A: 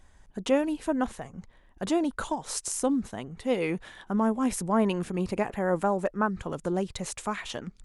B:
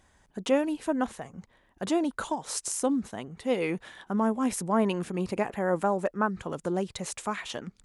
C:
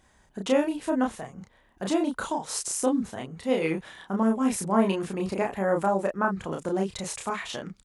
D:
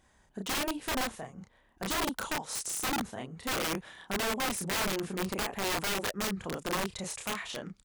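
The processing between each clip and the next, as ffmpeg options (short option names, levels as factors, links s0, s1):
-af "highpass=f=120:p=1"
-filter_complex "[0:a]asplit=2[s0][s1];[s1]adelay=31,volume=0.75[s2];[s0][s2]amix=inputs=2:normalize=0"
-af "aeval=exprs='(mod(12.6*val(0)+1,2)-1)/12.6':c=same,volume=0.631"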